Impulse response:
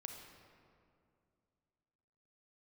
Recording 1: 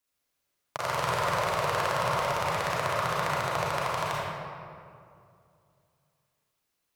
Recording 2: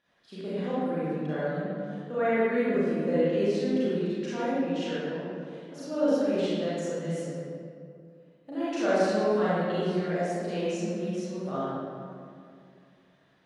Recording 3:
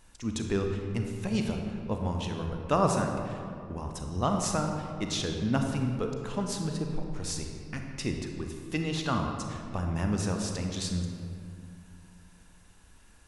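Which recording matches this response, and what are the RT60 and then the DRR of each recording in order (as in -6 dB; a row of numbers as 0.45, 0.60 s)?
3; 2.4, 2.4, 2.4 s; -7.0, -12.0, 3.0 dB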